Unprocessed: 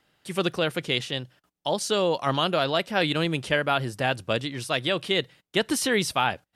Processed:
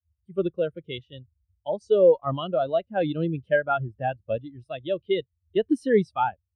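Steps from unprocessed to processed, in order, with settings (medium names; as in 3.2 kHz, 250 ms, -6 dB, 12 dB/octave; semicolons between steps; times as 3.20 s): band noise 52–100 Hz -48 dBFS; Chebyshev shaper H 8 -28 dB, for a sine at -9 dBFS; spectral contrast expander 2.5:1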